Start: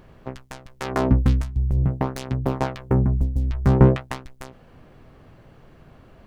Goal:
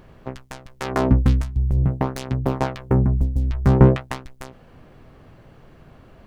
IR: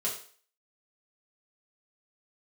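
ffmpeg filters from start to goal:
-af "volume=1.5dB"

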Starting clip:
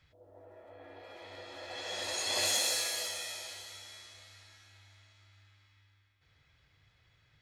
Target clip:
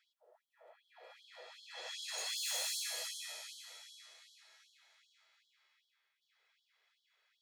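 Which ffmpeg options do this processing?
ffmpeg -i in.wav -af "volume=29.5dB,asoftclip=hard,volume=-29.5dB,afftfilt=real='re*gte(b*sr/1024,350*pow(3100/350,0.5+0.5*sin(2*PI*2.6*pts/sr)))':imag='im*gte(b*sr/1024,350*pow(3100/350,0.5+0.5*sin(2*PI*2.6*pts/sr)))':win_size=1024:overlap=0.75,volume=-5dB" out.wav

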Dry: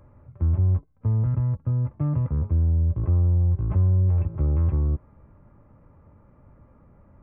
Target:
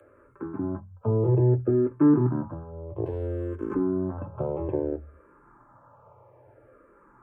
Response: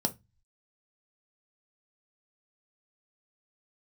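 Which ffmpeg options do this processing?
-filter_complex "[0:a]highpass=frequency=53:poles=1,asplit=2[link_01][link_02];[link_02]acompressor=threshold=-35dB:ratio=6,volume=0.5dB[link_03];[link_01][link_03]amix=inputs=2:normalize=0,asettb=1/sr,asplit=3[link_04][link_05][link_06];[link_04]atrim=end=3.064[link_07];[link_05]atrim=start=3.06:end=3.74,asetpts=PTS-STARTPTS,afade=type=in:duration=0.004:curve=qsin,afade=type=out:start_time=0.676:duration=0.004:curve=qsin,aeval=exprs='sgn(val(0))*max(abs(val(0))-0.00794,0)':channel_layout=same[link_08];[link_06]atrim=start=3.736[link_09];[link_07][link_08]acrossfade=duration=0.004:curve1=hsin:curve2=qsin[link_10];[link_10][link_09]acrossfade=duration=0.004:curve1=qsin:curve2=hsin,acrossover=split=110|470[link_11][link_12][link_13];[link_12]acrusher=bits=3:mix=0:aa=0.5[link_14];[link_11][link_14][link_13]amix=inputs=3:normalize=0[link_15];[1:a]atrim=start_sample=2205,asetrate=74970,aresample=44100[link_16];[link_15][link_16]afir=irnorm=-1:irlink=0,asplit=2[link_17][link_18];[link_18]afreqshift=-0.6[link_19];[link_17][link_19]amix=inputs=2:normalize=1"

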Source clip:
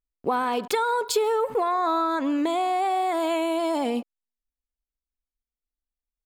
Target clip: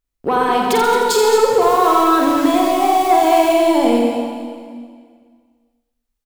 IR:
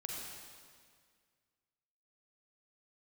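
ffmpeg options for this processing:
-filter_complex "[0:a]asoftclip=type=tanh:threshold=-17.5dB,asettb=1/sr,asplit=3[link_01][link_02][link_03];[link_01]atrim=end=1.614[link_04];[link_02]atrim=start=1.61:end=3.54,asetpts=PTS-STARTPTS,afade=type=in:duration=0.004:curve=qsin,afade=type=out:start_time=1.926:duration=0.004:curve=qsin,acrusher=bits=4:mode=log:mix=0:aa=0.000001[link_05];[link_03]atrim=start=3.536[link_06];[link_04][link_05]acrossfade=duration=0.004:curve1=hsin:curve2=qsin[link_07];[link_07][link_06]acrossfade=duration=0.004:curve1=qsin:curve2=hsin,aecho=1:1:46.65|221.6:0.562|0.316,asplit=2[link_08][link_09];[1:a]atrim=start_sample=2205,lowshelf=frequency=280:gain=5.5,adelay=85[link_10];[link_09][link_10]afir=irnorm=-1:irlink=0,volume=-1.5dB[link_11];[link_08][link_11]amix=inputs=2:normalize=0,volume=7.5dB"

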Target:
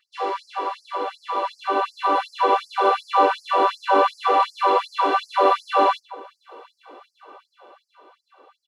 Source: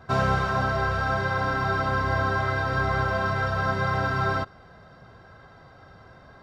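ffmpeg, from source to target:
ffmpeg -i in.wav -filter_complex "[0:a]dynaudnorm=framelen=240:gausssize=11:maxgain=12.5dB,asetrate=32667,aresample=44100,asplit=2[link_01][link_02];[link_02]adelay=74,lowpass=frequency=1100:poles=1,volume=-3.5dB,asplit=2[link_03][link_04];[link_04]adelay=74,lowpass=frequency=1100:poles=1,volume=0.49,asplit=2[link_05][link_06];[link_06]adelay=74,lowpass=frequency=1100:poles=1,volume=0.49,asplit=2[link_07][link_08];[link_08]adelay=74,lowpass=frequency=1100:poles=1,volume=0.49,asplit=2[link_09][link_10];[link_10]adelay=74,lowpass=frequency=1100:poles=1,volume=0.49,asplit=2[link_11][link_12];[link_12]adelay=74,lowpass=frequency=1100:poles=1,volume=0.49[link_13];[link_03][link_05][link_07][link_09][link_11][link_13]amix=inputs=6:normalize=0[link_14];[link_01][link_14]amix=inputs=2:normalize=0,afftfilt=real='re*gte(b*sr/1024,250*pow(4600/250,0.5+0.5*sin(2*PI*2.7*pts/sr)))':imag='im*gte(b*sr/1024,250*pow(4600/250,0.5+0.5*sin(2*PI*2.7*pts/sr)))':win_size=1024:overlap=0.75" out.wav

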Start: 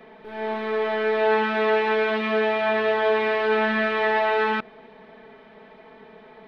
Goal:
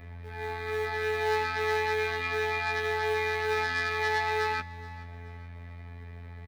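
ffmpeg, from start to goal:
ffmpeg -i in.wav -filter_complex "[0:a]aeval=exprs='val(0)+0.0126*(sin(2*PI*60*n/s)+sin(2*PI*2*60*n/s)/2+sin(2*PI*3*60*n/s)/3+sin(2*PI*4*60*n/s)/4+sin(2*PI*5*60*n/s)/5)':channel_layout=same,equalizer=frequency=62:width_type=o:width=0.25:gain=15,afftfilt=real='hypot(re,im)*cos(PI*b)':imag='0':win_size=2048:overlap=0.75,highshelf=frequency=2300:width_type=q:width=3:gain=-11,asplit=2[link_01][link_02];[link_02]asoftclip=type=tanh:threshold=-20.5dB,volume=-11dB[link_03];[link_01][link_03]amix=inputs=2:normalize=0,aexciter=amount=7.6:drive=8.7:freq=2400,acrossover=split=350|520[link_04][link_05][link_06];[link_05]acrusher=bits=3:mode=log:mix=0:aa=0.000001[link_07];[link_04][link_07][link_06]amix=inputs=3:normalize=0,aecho=1:1:426|852|1278:0.119|0.044|0.0163,volume=-8.5dB" out.wav

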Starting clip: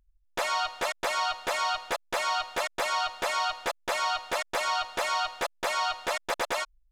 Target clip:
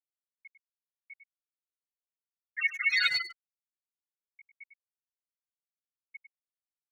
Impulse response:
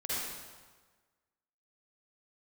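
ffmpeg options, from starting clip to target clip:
-filter_complex "[0:a]acrossover=split=1600[link_01][link_02];[link_01]aeval=exprs='abs(val(0))':channel_layout=same[link_03];[link_03][link_02]amix=inputs=2:normalize=0,asettb=1/sr,asplit=3[link_04][link_05][link_06];[link_04]atrim=end=2.464[link_07];[link_05]atrim=start=2.46:end=3.17,asetpts=PTS-STARTPTS,afade=type=in:duration=0.004:curve=qsin,afade=type=out:start_time=0.706:duration=0.004:curve=qsin,acontrast=85[link_08];[link_06]atrim=start=3.166[link_09];[link_07][link_08]acrossfade=duration=0.004:curve1=hsin:curve2=qsin[link_10];[link_10][link_09]acrossfade=duration=0.004:curve1=qsin:curve2=hsin,highpass=1100,asplit=2[link_11][link_12];[1:a]atrim=start_sample=2205,adelay=84[link_13];[link_12][link_13]afir=irnorm=-1:irlink=0,volume=-7dB[link_14];[link_11][link_14]amix=inputs=2:normalize=0,afftfilt=real='re*gte(hypot(re,im),0.2)':imag='im*gte(hypot(re,im),0.2)':win_size=1024:overlap=0.75,asplit=2[link_15][link_16];[link_16]adelay=100,highpass=300,lowpass=3400,asoftclip=type=hard:threshold=-34dB,volume=-9dB[link_17];[link_15][link_17]amix=inputs=2:normalize=0,asplit=2[link_18][link_19];[link_19]adelay=5.6,afreqshift=-0.29[link_20];[link_18][link_20]amix=inputs=2:normalize=1,volume=8dB"

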